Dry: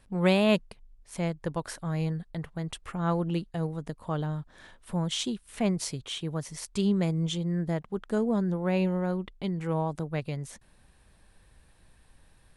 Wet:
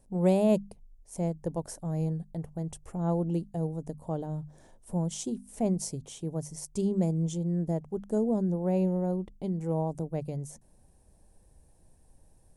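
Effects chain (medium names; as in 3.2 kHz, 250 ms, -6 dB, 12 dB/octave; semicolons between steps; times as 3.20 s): high-order bell 2.2 kHz -16 dB 2.3 oct; hum notches 50/100/150/200/250 Hz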